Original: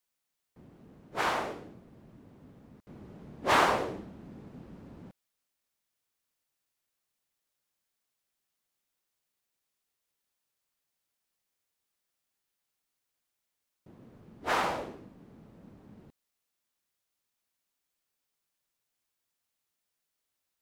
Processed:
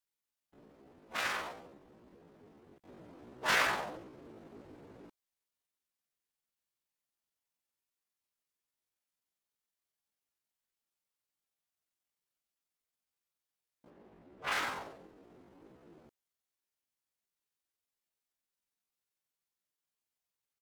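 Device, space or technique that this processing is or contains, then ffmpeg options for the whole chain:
chipmunk voice: -filter_complex "[0:a]asetrate=72056,aresample=44100,atempo=0.612027,asettb=1/sr,asplit=3[a][b][c];[a]atrim=end=13.904[d];[b]atrim=start=13.9:end=14.52,asetpts=PTS-STARTPTS,afade=t=in:d=0.004:c=qsin,afade=t=out:st=0.616:d=0.004:c=qsin,bass=f=250:g=0,treble=f=4k:g=-8[e];[c]atrim=start=14.516[f];[d][e]acrossfade=d=0.004:c1=hsin:c2=qsin[g];[g][f]acrossfade=d=0.004:c1=qsin:c2=hsin,volume=-5dB"

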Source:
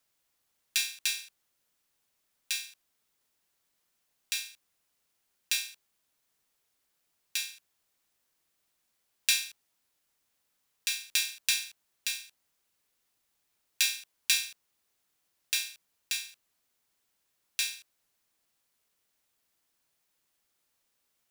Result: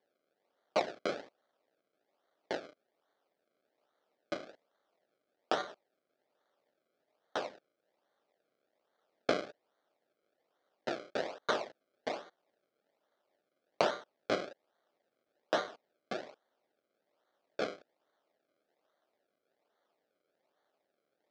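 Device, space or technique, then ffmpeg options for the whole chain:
circuit-bent sampling toy: -af "acrusher=samples=33:mix=1:aa=0.000001:lfo=1:lforange=33:lforate=1.2,highpass=440,equalizer=f=600:t=q:w=4:g=5,equalizer=f=1k:t=q:w=4:g=-6,equalizer=f=2.7k:t=q:w=4:g=-5,lowpass=f=5.1k:w=0.5412,lowpass=f=5.1k:w=1.3066"

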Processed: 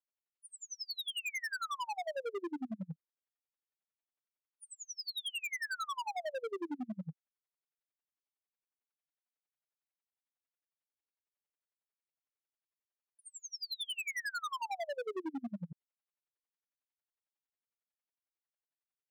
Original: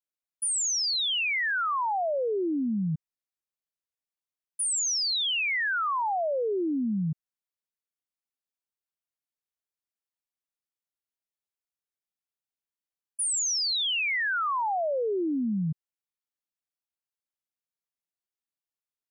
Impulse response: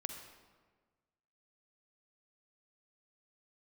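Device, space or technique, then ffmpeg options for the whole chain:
helicopter radio: -af "highpass=320,lowpass=2.6k,aeval=exprs='val(0)*pow(10,-38*(0.5-0.5*cos(2*PI*11*n/s))/20)':c=same,asoftclip=type=hard:threshold=-38.5dB,volume=3.5dB"

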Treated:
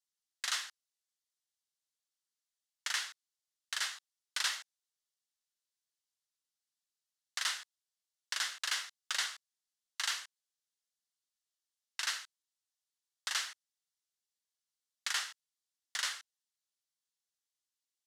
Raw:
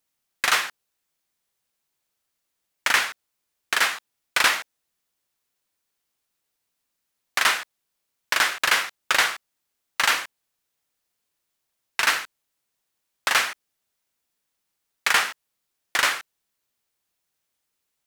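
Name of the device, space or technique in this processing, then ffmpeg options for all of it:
piezo pickup straight into a mixer: -filter_complex "[0:a]asettb=1/sr,asplit=3[a][b][c];[a]atrim=end=9.314[d];[b]atrim=start=9.31:end=10.16,asetpts=PTS-STARTPTS,afade=t=in:d=0.004:c=qsin,afade=t=out:st=0.846:d=0.004:c=qsin,highpass=f=470:w=0.5412,highpass=f=470:w=1.3066[e];[c]atrim=start=10.156[f];[d][e]acrossfade=d=0.004:c1=hsin:c2=qsin[g];[g][f]acrossfade=d=0.004:c1=qsin:c2=hsin,lowpass=6k,aderivative,equalizer=f=2.4k:t=o:w=0.24:g=-9,volume=-4dB"

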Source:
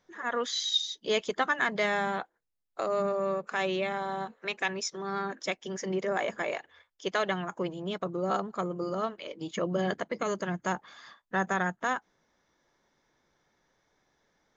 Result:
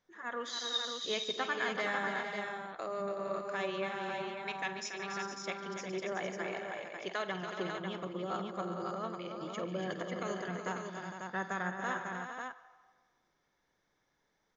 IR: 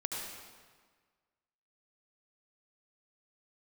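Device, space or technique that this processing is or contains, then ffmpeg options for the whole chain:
filtered reverb send: -filter_complex "[0:a]aecho=1:1:50|147|283|374|458|546:0.211|0.141|0.376|0.335|0.335|0.531,asplit=2[a][b];[b]highpass=f=560:w=0.5412,highpass=f=560:w=1.3066,lowpass=5.2k[c];[1:a]atrim=start_sample=2205[d];[c][d]afir=irnorm=-1:irlink=0,volume=-15dB[e];[a][e]amix=inputs=2:normalize=0,volume=-8.5dB"

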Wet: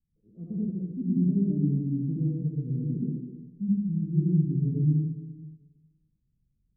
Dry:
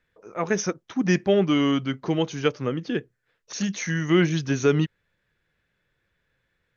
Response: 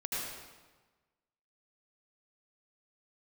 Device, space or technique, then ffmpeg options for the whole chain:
club heard from the street: -filter_complex "[0:a]alimiter=limit=-13dB:level=0:latency=1:release=248,lowpass=f=220:w=0.5412,lowpass=f=220:w=1.3066[a];[1:a]atrim=start_sample=2205[b];[a][b]afir=irnorm=-1:irlink=0"

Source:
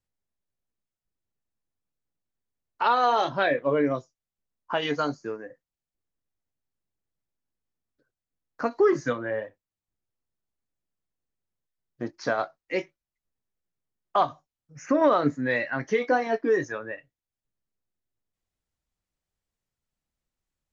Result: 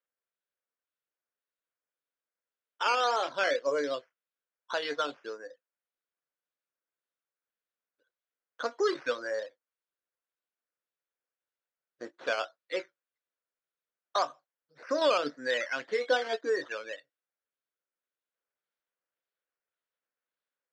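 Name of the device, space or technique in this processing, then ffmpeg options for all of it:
circuit-bent sampling toy: -af "acrusher=samples=9:mix=1:aa=0.000001:lfo=1:lforange=5.4:lforate=1.8,highpass=450,equalizer=f=510:t=q:w=4:g=6,equalizer=f=820:t=q:w=4:g=-4,equalizer=f=1.5k:t=q:w=4:g=6,equalizer=f=3.6k:t=q:w=4:g=3,lowpass=f=5.4k:w=0.5412,lowpass=f=5.4k:w=1.3066,volume=-5.5dB"

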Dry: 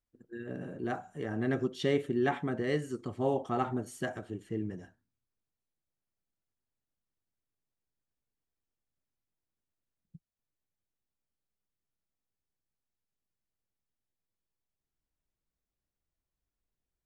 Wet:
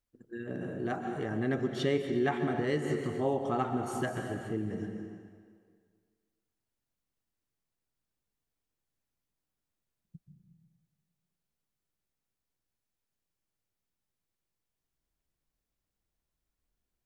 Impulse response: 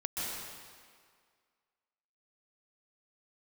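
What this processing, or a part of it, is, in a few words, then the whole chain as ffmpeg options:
ducked reverb: -filter_complex "[0:a]asplit=3[a][b][c];[1:a]atrim=start_sample=2205[d];[b][d]afir=irnorm=-1:irlink=0[e];[c]apad=whole_len=752299[f];[e][f]sidechaincompress=threshold=-33dB:ratio=8:attack=21:release=268,volume=-3.5dB[g];[a][g]amix=inputs=2:normalize=0,volume=-2dB"

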